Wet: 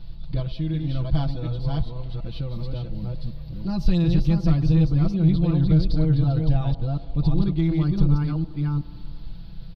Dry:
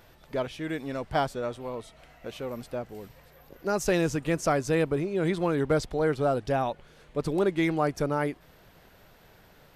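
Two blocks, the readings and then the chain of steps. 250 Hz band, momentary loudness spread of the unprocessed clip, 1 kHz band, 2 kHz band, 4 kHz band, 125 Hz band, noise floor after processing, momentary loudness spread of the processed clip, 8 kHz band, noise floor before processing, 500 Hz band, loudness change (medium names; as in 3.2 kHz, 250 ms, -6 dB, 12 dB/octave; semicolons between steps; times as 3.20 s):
+7.0 dB, 12 LU, -8.5 dB, under -10 dB, +1.5 dB, +15.0 dB, -37 dBFS, 14 LU, under -15 dB, -57 dBFS, -7.5 dB, +5.0 dB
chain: chunks repeated in reverse 367 ms, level -3 dB; comb 6 ms, depth 88%; feedback echo behind a band-pass 96 ms, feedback 71%, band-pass 540 Hz, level -16.5 dB; in parallel at +1 dB: compression, threshold -34 dBFS, peak gain reduction 18.5 dB; on the sum: FFT filter 110 Hz 0 dB, 260 Hz -7 dB, 400 Hz -19 dB, 1.1 kHz -13 dB, 1.9 kHz -15 dB, 4.4 kHz +9 dB, 7.2 kHz -25 dB, 14 kHz -8 dB; saturation -17 dBFS, distortion -24 dB; tilt EQ -3.5 dB/octave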